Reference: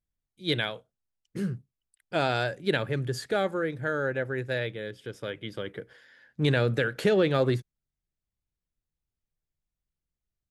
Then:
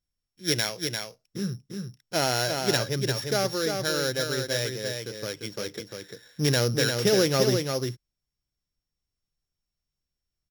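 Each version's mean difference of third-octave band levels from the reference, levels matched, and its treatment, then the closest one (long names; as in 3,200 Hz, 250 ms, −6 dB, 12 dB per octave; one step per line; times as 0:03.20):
10.5 dB: samples sorted by size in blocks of 8 samples
parametric band 5,400 Hz +5 dB 1.9 octaves
on a send: single-tap delay 347 ms −5 dB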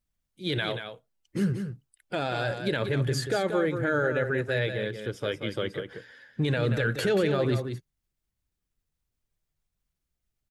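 5.0 dB: spectral magnitudes quantised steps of 15 dB
brickwall limiter −22.5 dBFS, peak gain reduction 10 dB
single-tap delay 183 ms −8 dB
level +5 dB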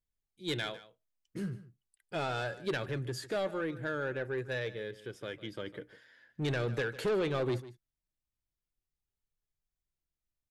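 3.5 dB: flanger 0.43 Hz, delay 2.2 ms, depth 1.2 ms, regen +69%
soft clipping −26.5 dBFS, distortion −11 dB
on a send: single-tap delay 151 ms −16.5 dB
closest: third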